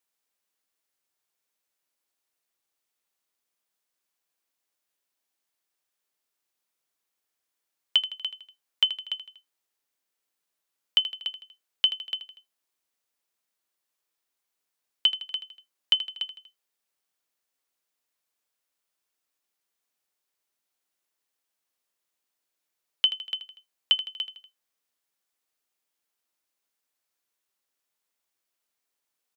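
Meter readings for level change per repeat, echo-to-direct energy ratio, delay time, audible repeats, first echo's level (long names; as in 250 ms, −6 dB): −5.5 dB, −11.5 dB, 80 ms, 3, −13.0 dB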